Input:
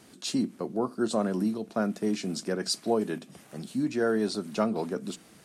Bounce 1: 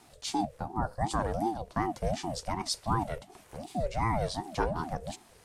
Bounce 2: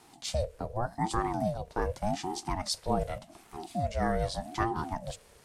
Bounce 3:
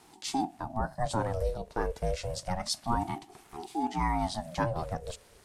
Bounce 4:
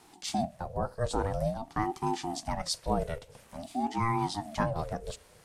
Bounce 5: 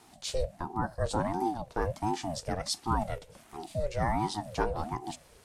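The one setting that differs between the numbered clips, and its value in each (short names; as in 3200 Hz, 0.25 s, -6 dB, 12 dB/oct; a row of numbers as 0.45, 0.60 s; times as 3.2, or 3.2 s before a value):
ring modulator with a swept carrier, at: 2.7, 0.85, 0.28, 0.49, 1.4 Hz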